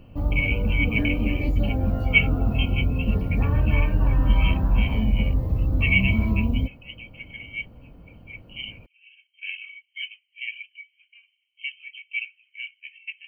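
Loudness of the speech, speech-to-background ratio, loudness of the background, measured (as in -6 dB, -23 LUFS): -29.5 LUFS, -5.5 dB, -24.0 LUFS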